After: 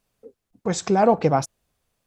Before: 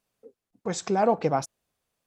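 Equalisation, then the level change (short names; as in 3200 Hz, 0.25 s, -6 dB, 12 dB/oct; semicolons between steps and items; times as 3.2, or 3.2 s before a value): low shelf 100 Hz +11 dB; +4.5 dB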